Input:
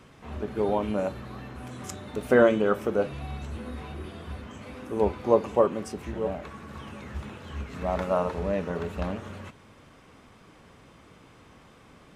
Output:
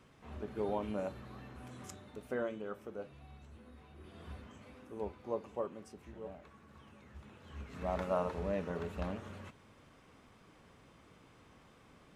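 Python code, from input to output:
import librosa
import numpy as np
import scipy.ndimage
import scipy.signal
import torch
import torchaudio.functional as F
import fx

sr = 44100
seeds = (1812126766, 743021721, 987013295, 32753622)

y = fx.gain(x, sr, db=fx.line((1.81, -10.0), (2.41, -19.0), (3.91, -19.0), (4.26, -9.5), (5.11, -17.0), (7.17, -17.0), (7.86, -8.0)))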